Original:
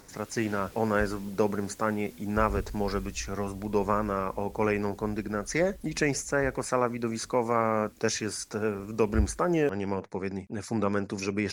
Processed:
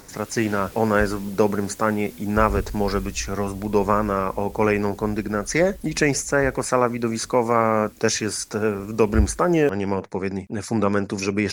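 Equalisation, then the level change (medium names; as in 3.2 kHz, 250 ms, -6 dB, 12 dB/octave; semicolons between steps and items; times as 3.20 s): treble shelf 11 kHz +3.5 dB; +7.0 dB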